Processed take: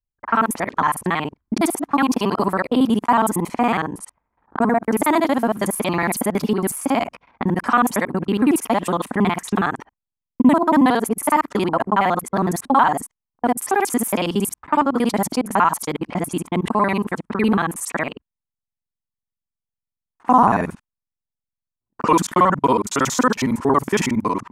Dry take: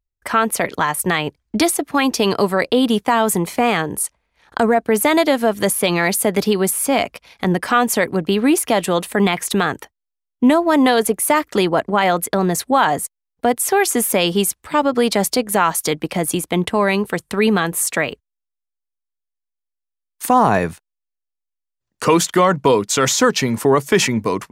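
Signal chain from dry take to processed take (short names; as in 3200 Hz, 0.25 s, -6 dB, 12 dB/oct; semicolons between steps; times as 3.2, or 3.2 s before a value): local time reversal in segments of 46 ms; low-pass opened by the level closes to 720 Hz, open at -15 dBFS; graphic EQ 250/500/1000/4000 Hz +7/-4/+9/-5 dB; gain -5.5 dB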